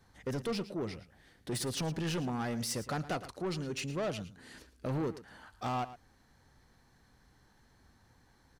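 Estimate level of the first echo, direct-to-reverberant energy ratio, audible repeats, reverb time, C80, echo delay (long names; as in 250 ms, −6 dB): −15.0 dB, no reverb audible, 1, no reverb audible, no reverb audible, 112 ms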